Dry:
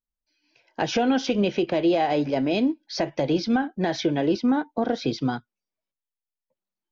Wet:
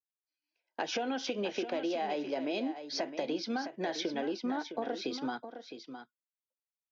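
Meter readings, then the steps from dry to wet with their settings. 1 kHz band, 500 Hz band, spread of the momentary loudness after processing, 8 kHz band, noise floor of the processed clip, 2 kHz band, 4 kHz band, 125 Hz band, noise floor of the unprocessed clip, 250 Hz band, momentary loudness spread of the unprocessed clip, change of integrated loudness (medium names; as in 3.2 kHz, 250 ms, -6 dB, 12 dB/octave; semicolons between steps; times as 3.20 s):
-9.5 dB, -10.0 dB, 13 LU, no reading, under -85 dBFS, -8.0 dB, -6.5 dB, -21.0 dB, under -85 dBFS, -13.0 dB, 7 LU, -11.0 dB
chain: Bessel high-pass 340 Hz, order 4; gate -56 dBFS, range -17 dB; compression, threshold -26 dBFS, peak gain reduction 7 dB; on a send: delay 661 ms -10 dB; on the sum: trim -4.5 dB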